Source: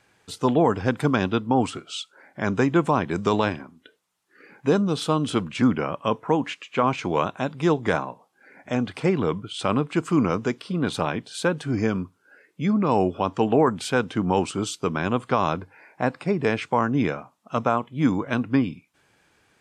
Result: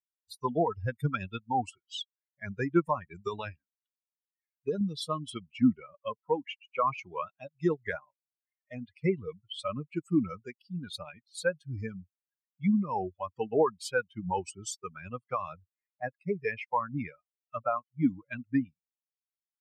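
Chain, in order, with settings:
spectral dynamics exaggerated over time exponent 3
0:03.12–0:04.81: downward compressor 2.5 to 1, threshold −30 dBFS, peak gain reduction 7.5 dB
0:05.51–0:06.15: high-shelf EQ 2,700 Hz −11.5 dB

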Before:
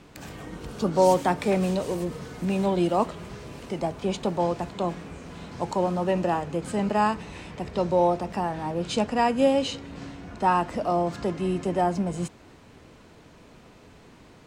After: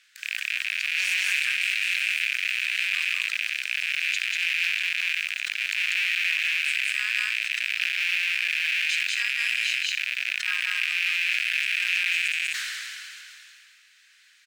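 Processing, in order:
loose part that buzzes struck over −39 dBFS, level −14 dBFS
elliptic high-pass filter 1,600 Hz, stop band 50 dB
noise that follows the level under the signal 30 dB
loudspeakers that aren't time-aligned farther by 66 metres 0 dB, 87 metres −10 dB
level that may fall only so fast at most 22 dB per second

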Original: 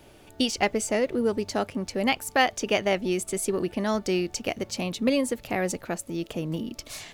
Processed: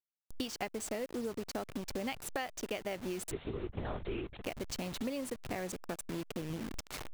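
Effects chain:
hold until the input has moved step −30.5 dBFS
downward compressor 6 to 1, threshold −31 dBFS, peak gain reduction 14 dB
0:03.31–0:04.42: linear-prediction vocoder at 8 kHz whisper
level −4 dB

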